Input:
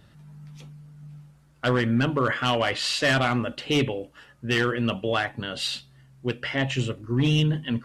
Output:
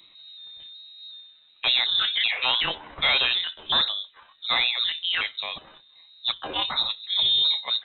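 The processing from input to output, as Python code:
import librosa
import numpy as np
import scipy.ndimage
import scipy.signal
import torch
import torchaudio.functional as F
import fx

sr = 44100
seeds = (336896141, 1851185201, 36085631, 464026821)

y = fx.pitch_trill(x, sr, semitones=8.5, every_ms=372)
y = fx.freq_invert(y, sr, carrier_hz=3900)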